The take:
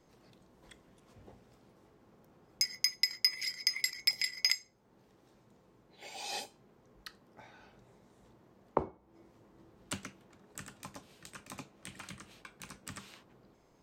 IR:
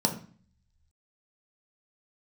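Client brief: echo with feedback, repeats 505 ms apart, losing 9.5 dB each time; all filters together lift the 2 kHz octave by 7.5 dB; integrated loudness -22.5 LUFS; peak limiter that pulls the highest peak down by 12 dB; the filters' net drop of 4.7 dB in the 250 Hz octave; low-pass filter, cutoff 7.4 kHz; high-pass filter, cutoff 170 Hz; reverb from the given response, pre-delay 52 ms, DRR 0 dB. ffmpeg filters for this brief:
-filter_complex "[0:a]highpass=170,lowpass=7400,equalizer=f=250:t=o:g=-5.5,equalizer=f=2000:t=o:g=8,alimiter=limit=0.075:level=0:latency=1,aecho=1:1:505|1010|1515|2020:0.335|0.111|0.0365|0.012,asplit=2[s0][s1];[1:a]atrim=start_sample=2205,adelay=52[s2];[s1][s2]afir=irnorm=-1:irlink=0,volume=0.335[s3];[s0][s3]amix=inputs=2:normalize=0,volume=5.31"

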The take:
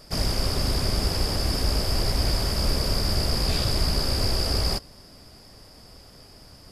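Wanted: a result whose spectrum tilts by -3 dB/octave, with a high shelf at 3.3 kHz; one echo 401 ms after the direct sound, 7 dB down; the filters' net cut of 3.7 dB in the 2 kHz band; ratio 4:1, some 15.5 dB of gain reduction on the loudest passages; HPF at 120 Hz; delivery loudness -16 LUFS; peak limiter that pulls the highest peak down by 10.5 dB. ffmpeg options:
-af "highpass=120,equalizer=f=2000:t=o:g=-7,highshelf=f=3300:g=6.5,acompressor=threshold=0.00891:ratio=4,alimiter=level_in=4.73:limit=0.0631:level=0:latency=1,volume=0.211,aecho=1:1:401:0.447,volume=25.1"

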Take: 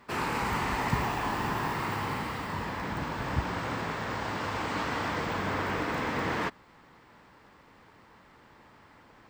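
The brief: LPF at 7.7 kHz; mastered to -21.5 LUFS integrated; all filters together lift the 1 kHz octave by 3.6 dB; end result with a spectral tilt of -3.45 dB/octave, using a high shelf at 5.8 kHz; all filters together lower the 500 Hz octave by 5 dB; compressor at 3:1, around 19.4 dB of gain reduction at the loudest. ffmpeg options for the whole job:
-af "lowpass=7700,equalizer=f=500:t=o:g=-8.5,equalizer=f=1000:t=o:g=6.5,highshelf=f=5800:g=-5,acompressor=threshold=0.00316:ratio=3,volume=20"

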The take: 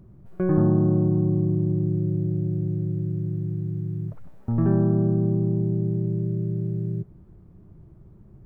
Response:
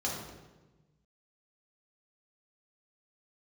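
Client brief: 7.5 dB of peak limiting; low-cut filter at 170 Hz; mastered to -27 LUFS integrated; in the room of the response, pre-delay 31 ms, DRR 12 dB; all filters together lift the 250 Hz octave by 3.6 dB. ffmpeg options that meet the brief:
-filter_complex "[0:a]highpass=170,equalizer=f=250:t=o:g=8.5,alimiter=limit=0.224:level=0:latency=1,asplit=2[s0][s1];[1:a]atrim=start_sample=2205,adelay=31[s2];[s1][s2]afir=irnorm=-1:irlink=0,volume=0.126[s3];[s0][s3]amix=inputs=2:normalize=0,volume=0.668"

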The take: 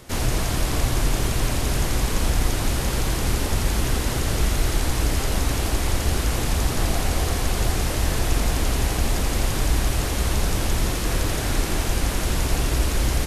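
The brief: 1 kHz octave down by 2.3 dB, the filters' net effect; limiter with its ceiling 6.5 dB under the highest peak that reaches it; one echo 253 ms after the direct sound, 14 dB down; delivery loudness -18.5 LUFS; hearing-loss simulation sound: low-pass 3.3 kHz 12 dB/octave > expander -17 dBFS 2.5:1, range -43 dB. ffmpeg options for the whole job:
-af "equalizer=f=1000:t=o:g=-3,alimiter=limit=0.188:level=0:latency=1,lowpass=3300,aecho=1:1:253:0.2,agate=range=0.00708:threshold=0.141:ratio=2.5,volume=4.73"

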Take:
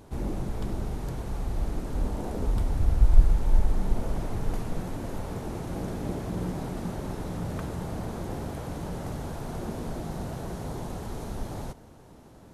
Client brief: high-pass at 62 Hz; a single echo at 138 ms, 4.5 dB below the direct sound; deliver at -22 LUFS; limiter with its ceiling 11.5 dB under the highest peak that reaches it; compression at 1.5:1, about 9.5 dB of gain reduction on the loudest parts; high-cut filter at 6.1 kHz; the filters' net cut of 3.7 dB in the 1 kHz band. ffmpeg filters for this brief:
-af "highpass=62,lowpass=6100,equalizer=f=1000:t=o:g=-5,acompressor=threshold=0.00501:ratio=1.5,alimiter=level_in=3.16:limit=0.0631:level=0:latency=1,volume=0.316,aecho=1:1:138:0.596,volume=10"

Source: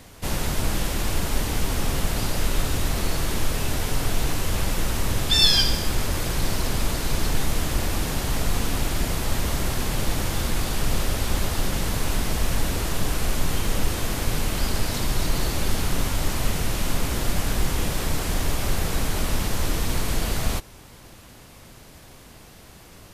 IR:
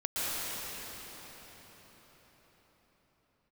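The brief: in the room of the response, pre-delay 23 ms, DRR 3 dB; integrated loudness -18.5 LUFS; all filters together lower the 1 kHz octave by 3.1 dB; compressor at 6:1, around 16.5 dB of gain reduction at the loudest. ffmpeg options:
-filter_complex "[0:a]equalizer=f=1000:t=o:g=-4,acompressor=threshold=0.02:ratio=6,asplit=2[s0][s1];[1:a]atrim=start_sample=2205,adelay=23[s2];[s1][s2]afir=irnorm=-1:irlink=0,volume=0.237[s3];[s0][s3]amix=inputs=2:normalize=0,volume=10"

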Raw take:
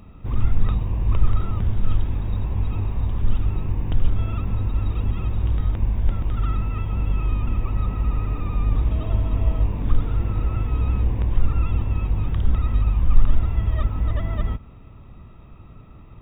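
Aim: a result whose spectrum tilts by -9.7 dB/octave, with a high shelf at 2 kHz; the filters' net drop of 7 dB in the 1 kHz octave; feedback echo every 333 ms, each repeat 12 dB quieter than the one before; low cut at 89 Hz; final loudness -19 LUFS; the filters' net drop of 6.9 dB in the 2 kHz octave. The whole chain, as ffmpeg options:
-af "highpass=89,equalizer=f=1000:t=o:g=-6.5,highshelf=f=2000:g=-3.5,equalizer=f=2000:t=o:g=-5,aecho=1:1:333|666|999:0.251|0.0628|0.0157,volume=3.55"

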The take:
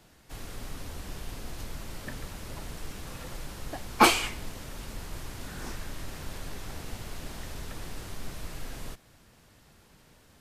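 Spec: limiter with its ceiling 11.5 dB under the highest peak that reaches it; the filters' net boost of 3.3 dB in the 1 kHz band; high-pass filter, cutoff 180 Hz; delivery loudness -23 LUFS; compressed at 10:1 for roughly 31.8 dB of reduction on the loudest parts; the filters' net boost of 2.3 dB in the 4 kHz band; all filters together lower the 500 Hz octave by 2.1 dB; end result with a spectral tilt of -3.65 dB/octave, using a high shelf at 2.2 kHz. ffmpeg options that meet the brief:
-af "highpass=180,equalizer=f=500:t=o:g=-4.5,equalizer=f=1000:t=o:g=6,highshelf=f=2200:g=-5.5,equalizer=f=4000:t=o:g=8,acompressor=threshold=0.00562:ratio=10,volume=23.7,alimiter=limit=0.2:level=0:latency=1"

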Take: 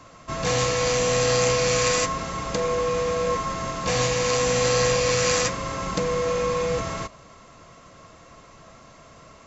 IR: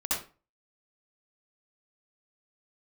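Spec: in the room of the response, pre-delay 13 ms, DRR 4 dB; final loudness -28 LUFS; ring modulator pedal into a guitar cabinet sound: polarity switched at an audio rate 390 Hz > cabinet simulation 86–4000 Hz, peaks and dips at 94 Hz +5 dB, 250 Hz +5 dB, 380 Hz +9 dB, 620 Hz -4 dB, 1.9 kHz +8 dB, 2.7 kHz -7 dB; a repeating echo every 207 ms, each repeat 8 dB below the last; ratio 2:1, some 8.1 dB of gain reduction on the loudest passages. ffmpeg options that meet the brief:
-filter_complex "[0:a]acompressor=threshold=0.0224:ratio=2,aecho=1:1:207|414|621|828|1035:0.398|0.159|0.0637|0.0255|0.0102,asplit=2[s0][s1];[1:a]atrim=start_sample=2205,adelay=13[s2];[s1][s2]afir=irnorm=-1:irlink=0,volume=0.266[s3];[s0][s3]amix=inputs=2:normalize=0,aeval=exprs='val(0)*sgn(sin(2*PI*390*n/s))':c=same,highpass=86,equalizer=f=94:t=q:w=4:g=5,equalizer=f=250:t=q:w=4:g=5,equalizer=f=380:t=q:w=4:g=9,equalizer=f=620:t=q:w=4:g=-4,equalizer=f=1900:t=q:w=4:g=8,equalizer=f=2700:t=q:w=4:g=-7,lowpass=f=4000:w=0.5412,lowpass=f=4000:w=1.3066,volume=1.12"

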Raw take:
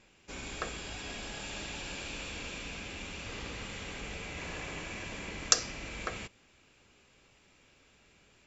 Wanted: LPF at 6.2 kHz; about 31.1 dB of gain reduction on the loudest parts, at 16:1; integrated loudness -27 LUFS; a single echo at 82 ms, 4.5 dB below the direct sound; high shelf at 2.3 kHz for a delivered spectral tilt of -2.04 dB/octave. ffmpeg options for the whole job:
-af "lowpass=6200,highshelf=f=2300:g=7.5,acompressor=threshold=0.00355:ratio=16,aecho=1:1:82:0.596,volume=15.8"

